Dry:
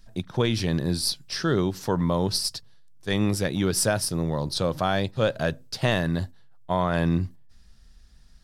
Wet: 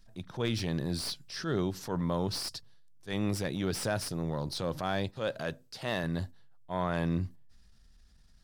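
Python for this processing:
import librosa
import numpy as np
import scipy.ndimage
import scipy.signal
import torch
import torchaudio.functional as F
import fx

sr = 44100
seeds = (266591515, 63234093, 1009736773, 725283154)

y = fx.low_shelf(x, sr, hz=130.0, db=-10.0, at=(5.1, 6.04))
y = fx.transient(y, sr, attack_db=-7, sustain_db=2)
y = fx.slew_limit(y, sr, full_power_hz=240.0)
y = y * librosa.db_to_amplitude(-6.5)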